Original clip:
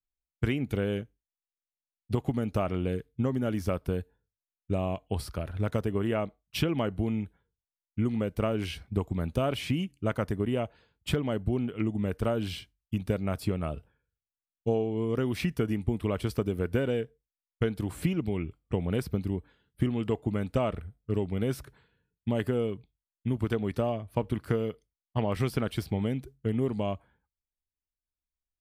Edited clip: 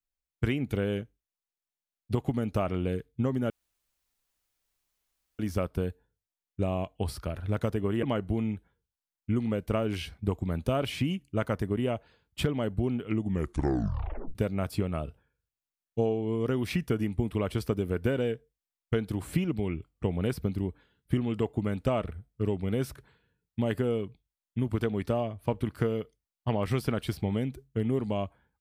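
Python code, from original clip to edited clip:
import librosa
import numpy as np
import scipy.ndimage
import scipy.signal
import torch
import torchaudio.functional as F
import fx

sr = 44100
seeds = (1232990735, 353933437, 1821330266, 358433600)

y = fx.edit(x, sr, fx.insert_room_tone(at_s=3.5, length_s=1.89),
    fx.cut(start_s=6.14, length_s=0.58),
    fx.tape_stop(start_s=11.93, length_s=1.11), tone=tone)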